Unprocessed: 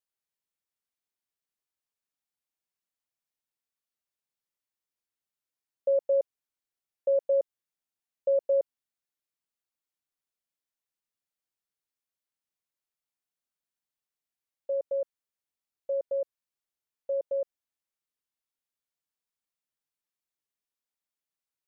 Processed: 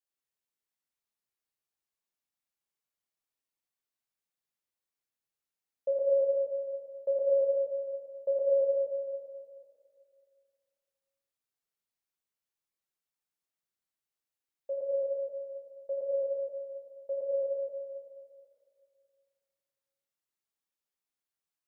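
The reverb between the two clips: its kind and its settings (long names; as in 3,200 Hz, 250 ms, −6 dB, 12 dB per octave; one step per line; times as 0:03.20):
dense smooth reverb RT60 2.3 s, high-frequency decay 0.75×, DRR −3 dB
level −5.5 dB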